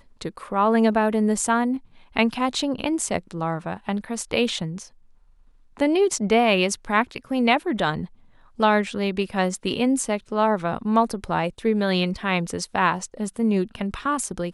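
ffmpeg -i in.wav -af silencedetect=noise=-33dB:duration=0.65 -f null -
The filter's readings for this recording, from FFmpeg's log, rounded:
silence_start: 4.83
silence_end: 5.77 | silence_duration: 0.94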